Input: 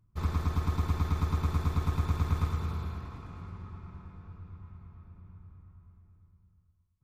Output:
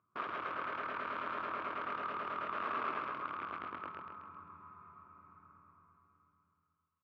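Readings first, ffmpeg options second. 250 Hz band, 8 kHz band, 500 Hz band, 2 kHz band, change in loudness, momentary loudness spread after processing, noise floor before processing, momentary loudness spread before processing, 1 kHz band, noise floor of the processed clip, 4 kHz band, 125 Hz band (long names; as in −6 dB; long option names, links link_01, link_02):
−12.5 dB, can't be measured, 0.0 dB, +6.0 dB, −7.5 dB, 18 LU, −69 dBFS, 19 LU, +4.0 dB, −81 dBFS, −4.0 dB, −31.5 dB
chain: -filter_complex "[0:a]acompressor=threshold=-36dB:ratio=3,aeval=exprs='(mod(63.1*val(0)+1,2)-1)/63.1':channel_layout=same,highpass=480,equalizer=frequency=500:width_type=q:width=4:gain=-5,equalizer=frequency=810:width_type=q:width=4:gain=-9,equalizer=frequency=1200:width_type=q:width=4:gain=10,equalizer=frequency=1900:width_type=q:width=4:gain=-7,lowpass=frequency=2300:width=0.5412,lowpass=frequency=2300:width=1.3066,asplit=2[link_01][link_02];[link_02]aecho=0:1:133|266|399|532|665|798:0.631|0.297|0.139|0.0655|0.0308|0.0145[link_03];[link_01][link_03]amix=inputs=2:normalize=0,volume=4.5dB"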